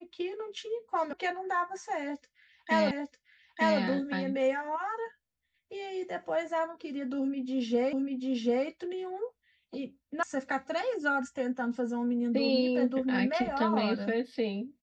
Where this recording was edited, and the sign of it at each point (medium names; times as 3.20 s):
1.13 s: sound stops dead
2.91 s: repeat of the last 0.9 s
7.93 s: repeat of the last 0.74 s
10.23 s: sound stops dead